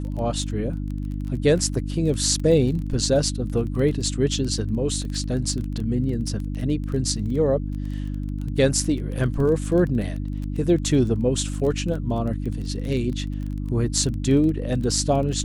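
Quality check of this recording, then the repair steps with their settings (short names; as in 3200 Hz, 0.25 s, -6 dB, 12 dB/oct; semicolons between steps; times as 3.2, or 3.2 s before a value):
crackle 20/s -29 dBFS
hum 50 Hz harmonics 6 -28 dBFS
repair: de-click; de-hum 50 Hz, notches 6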